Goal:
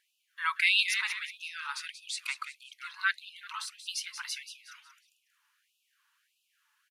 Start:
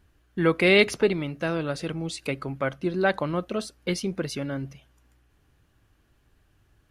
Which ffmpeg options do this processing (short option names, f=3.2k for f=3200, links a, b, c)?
-filter_complex "[0:a]asplit=5[a][b][c][d][e];[b]adelay=182,afreqshift=-77,volume=-10dB[f];[c]adelay=364,afreqshift=-154,volume=-18.2dB[g];[d]adelay=546,afreqshift=-231,volume=-26.4dB[h];[e]adelay=728,afreqshift=-308,volume=-34.5dB[i];[a][f][g][h][i]amix=inputs=5:normalize=0,afftfilt=real='re*gte(b*sr/1024,820*pow(2500/820,0.5+0.5*sin(2*PI*1.6*pts/sr)))':imag='im*gte(b*sr/1024,820*pow(2500/820,0.5+0.5*sin(2*PI*1.6*pts/sr)))':win_size=1024:overlap=0.75"